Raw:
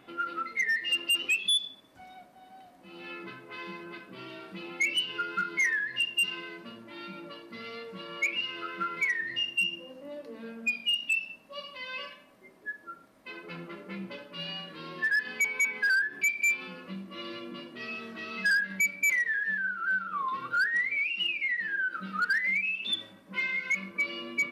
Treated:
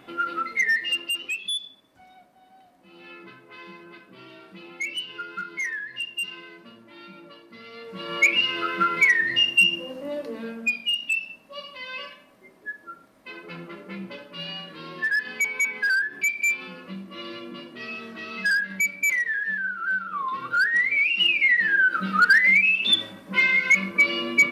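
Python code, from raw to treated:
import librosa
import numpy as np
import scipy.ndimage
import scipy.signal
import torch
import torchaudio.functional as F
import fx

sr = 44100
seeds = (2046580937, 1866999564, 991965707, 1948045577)

y = fx.gain(x, sr, db=fx.line((0.75, 6.0), (1.2, -2.5), (7.7, -2.5), (8.14, 10.5), (10.25, 10.5), (10.85, 3.0), (20.25, 3.0), (21.45, 11.0)))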